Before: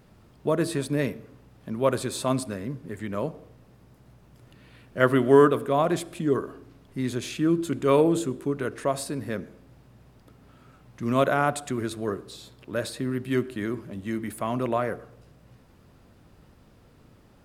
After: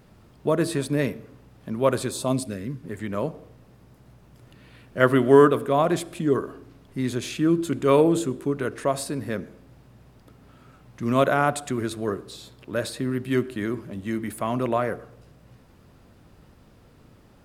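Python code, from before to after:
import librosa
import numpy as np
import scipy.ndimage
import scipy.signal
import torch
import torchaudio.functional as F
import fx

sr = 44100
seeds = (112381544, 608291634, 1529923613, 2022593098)

y = fx.peak_eq(x, sr, hz=fx.line((2.1, 2400.0), (2.82, 550.0)), db=-12.0, octaves=1.0, at=(2.1, 2.82), fade=0.02)
y = F.gain(torch.from_numpy(y), 2.0).numpy()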